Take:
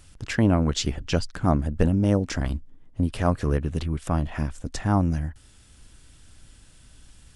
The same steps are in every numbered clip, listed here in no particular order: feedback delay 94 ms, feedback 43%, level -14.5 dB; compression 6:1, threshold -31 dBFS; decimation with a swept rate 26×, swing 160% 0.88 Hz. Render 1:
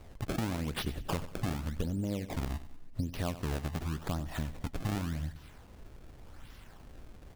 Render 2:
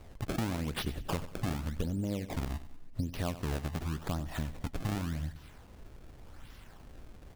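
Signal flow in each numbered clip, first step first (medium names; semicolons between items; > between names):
compression > decimation with a swept rate > feedback delay; decimation with a swept rate > compression > feedback delay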